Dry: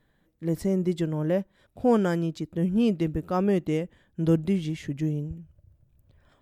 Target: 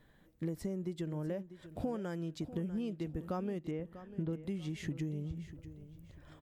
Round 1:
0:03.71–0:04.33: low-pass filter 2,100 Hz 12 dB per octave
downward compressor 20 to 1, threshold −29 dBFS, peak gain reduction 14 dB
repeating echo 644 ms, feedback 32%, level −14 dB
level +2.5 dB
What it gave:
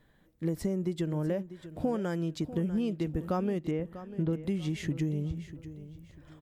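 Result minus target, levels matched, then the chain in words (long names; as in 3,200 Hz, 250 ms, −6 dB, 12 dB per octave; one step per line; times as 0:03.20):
downward compressor: peak gain reduction −7 dB
0:03.71–0:04.33: low-pass filter 2,100 Hz 12 dB per octave
downward compressor 20 to 1, threshold −36.5 dBFS, peak gain reduction 21.5 dB
repeating echo 644 ms, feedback 32%, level −14 dB
level +2.5 dB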